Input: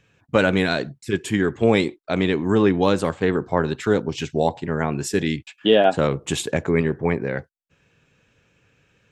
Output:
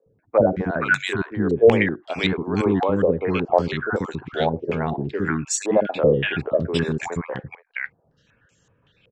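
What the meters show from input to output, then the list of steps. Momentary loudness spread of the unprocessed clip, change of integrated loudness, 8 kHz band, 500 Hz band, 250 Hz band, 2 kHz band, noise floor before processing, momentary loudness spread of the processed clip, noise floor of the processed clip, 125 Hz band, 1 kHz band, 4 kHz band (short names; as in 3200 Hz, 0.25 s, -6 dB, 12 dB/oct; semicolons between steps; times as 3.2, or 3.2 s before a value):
8 LU, -0.5 dB, +3.0 dB, +0.5 dB, -2.0 dB, +2.0 dB, -65 dBFS, 11 LU, -64 dBFS, -1.0 dB, -0.5 dB, -3.5 dB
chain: random spectral dropouts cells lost 23%; three bands offset in time mids, lows, highs 60/470 ms, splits 370/1300 Hz; stepped low-pass 5.3 Hz 480–7200 Hz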